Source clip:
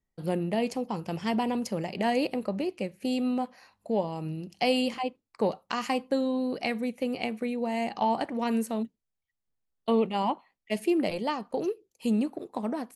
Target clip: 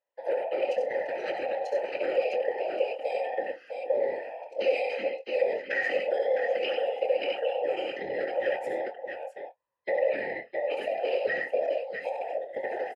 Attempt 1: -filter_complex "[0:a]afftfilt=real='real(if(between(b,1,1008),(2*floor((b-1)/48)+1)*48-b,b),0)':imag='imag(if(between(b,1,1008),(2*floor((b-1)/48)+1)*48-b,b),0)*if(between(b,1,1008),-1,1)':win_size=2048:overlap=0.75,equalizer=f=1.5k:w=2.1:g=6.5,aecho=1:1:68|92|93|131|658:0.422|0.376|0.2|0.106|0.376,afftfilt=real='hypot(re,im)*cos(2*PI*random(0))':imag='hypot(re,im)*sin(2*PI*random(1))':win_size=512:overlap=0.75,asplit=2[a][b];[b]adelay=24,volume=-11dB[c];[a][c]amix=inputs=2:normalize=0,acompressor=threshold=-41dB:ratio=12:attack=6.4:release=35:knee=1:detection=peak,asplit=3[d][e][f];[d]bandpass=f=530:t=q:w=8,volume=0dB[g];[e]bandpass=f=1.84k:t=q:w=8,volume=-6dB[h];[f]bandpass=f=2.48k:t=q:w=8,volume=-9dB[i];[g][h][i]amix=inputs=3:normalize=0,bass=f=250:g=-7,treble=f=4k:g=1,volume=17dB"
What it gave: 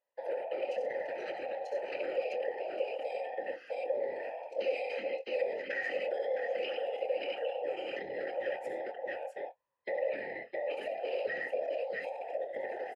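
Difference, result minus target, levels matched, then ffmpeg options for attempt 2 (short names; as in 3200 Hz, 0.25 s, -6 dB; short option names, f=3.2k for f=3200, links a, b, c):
compressor: peak gain reduction +7.5 dB
-filter_complex "[0:a]afftfilt=real='real(if(between(b,1,1008),(2*floor((b-1)/48)+1)*48-b,b),0)':imag='imag(if(between(b,1,1008),(2*floor((b-1)/48)+1)*48-b,b),0)*if(between(b,1,1008),-1,1)':win_size=2048:overlap=0.75,equalizer=f=1.5k:w=2.1:g=6.5,aecho=1:1:68|92|93|131|658:0.422|0.376|0.2|0.106|0.376,afftfilt=real='hypot(re,im)*cos(2*PI*random(0))':imag='hypot(re,im)*sin(2*PI*random(1))':win_size=512:overlap=0.75,asplit=2[a][b];[b]adelay=24,volume=-11dB[c];[a][c]amix=inputs=2:normalize=0,acompressor=threshold=-33dB:ratio=12:attack=6.4:release=35:knee=1:detection=peak,asplit=3[d][e][f];[d]bandpass=f=530:t=q:w=8,volume=0dB[g];[e]bandpass=f=1.84k:t=q:w=8,volume=-6dB[h];[f]bandpass=f=2.48k:t=q:w=8,volume=-9dB[i];[g][h][i]amix=inputs=3:normalize=0,bass=f=250:g=-7,treble=f=4k:g=1,volume=17dB"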